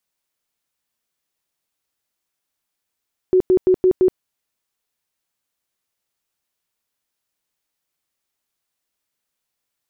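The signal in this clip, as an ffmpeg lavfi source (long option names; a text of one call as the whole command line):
ffmpeg -f lavfi -i "aevalsrc='0.316*sin(2*PI*370*mod(t,0.17))*lt(mod(t,0.17),27/370)':duration=0.85:sample_rate=44100" out.wav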